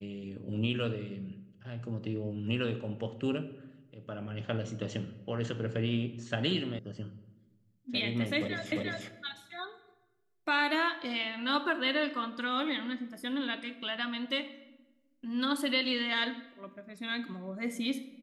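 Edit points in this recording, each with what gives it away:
6.79 sound cut off
8.72 repeat of the last 0.35 s

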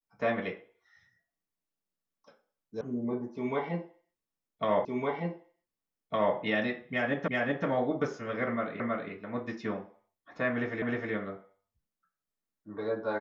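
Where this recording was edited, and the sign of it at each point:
2.81 sound cut off
4.85 repeat of the last 1.51 s
7.28 repeat of the last 0.38 s
8.8 repeat of the last 0.32 s
10.82 repeat of the last 0.31 s

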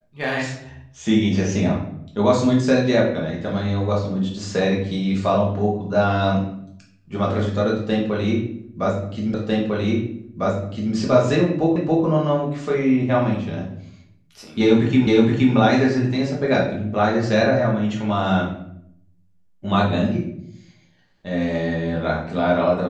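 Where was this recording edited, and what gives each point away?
9.34 repeat of the last 1.6 s
11.76 repeat of the last 0.28 s
15.07 repeat of the last 0.47 s

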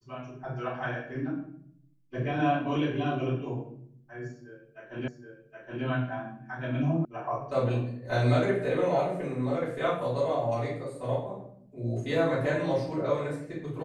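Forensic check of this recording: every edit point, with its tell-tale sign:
5.08 repeat of the last 0.77 s
7.05 sound cut off

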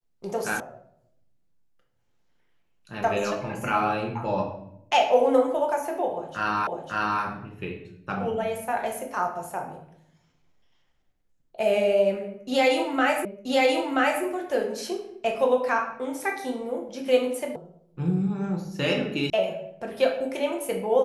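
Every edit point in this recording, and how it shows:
0.6 sound cut off
6.67 repeat of the last 0.55 s
13.25 repeat of the last 0.98 s
17.56 sound cut off
19.3 sound cut off

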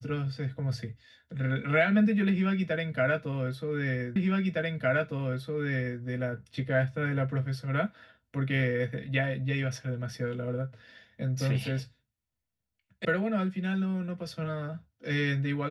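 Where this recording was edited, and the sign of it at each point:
4.16 repeat of the last 1.86 s
13.05 sound cut off

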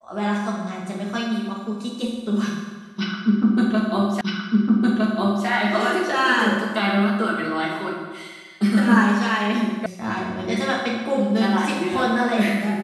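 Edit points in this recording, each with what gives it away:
4.21 repeat of the last 1.26 s
9.86 sound cut off

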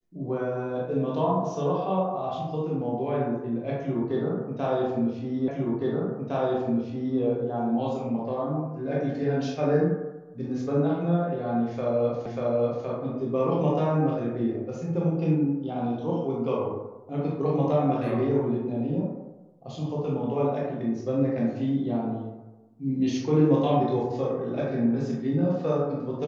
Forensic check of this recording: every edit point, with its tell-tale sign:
5.48 repeat of the last 1.71 s
12.26 repeat of the last 0.59 s

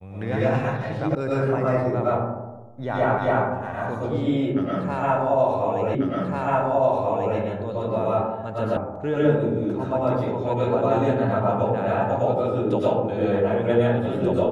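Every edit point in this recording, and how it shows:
1.15 sound cut off
3.18 repeat of the last 0.27 s
5.95 repeat of the last 1.44 s
8.77 sound cut off

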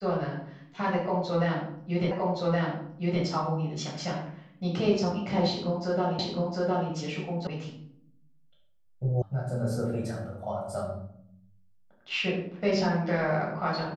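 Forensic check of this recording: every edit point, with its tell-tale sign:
2.11 repeat of the last 1.12 s
6.19 repeat of the last 0.71 s
7.47 sound cut off
9.22 sound cut off

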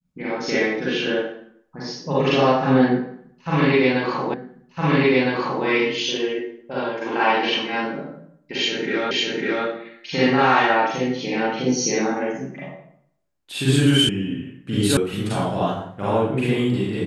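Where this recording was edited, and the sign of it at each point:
4.34 repeat of the last 1.31 s
9.11 repeat of the last 0.55 s
14.09 sound cut off
14.97 sound cut off

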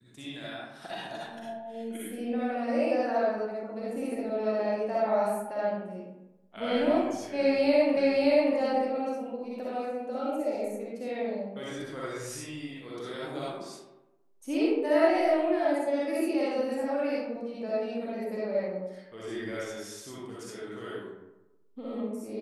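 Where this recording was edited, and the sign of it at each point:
7.97 repeat of the last 0.58 s

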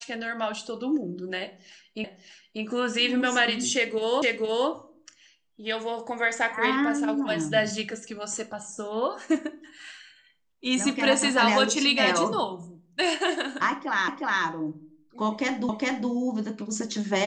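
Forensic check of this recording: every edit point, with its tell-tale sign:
2.04 repeat of the last 0.59 s
4.22 repeat of the last 0.47 s
14.08 repeat of the last 0.36 s
15.69 repeat of the last 0.41 s

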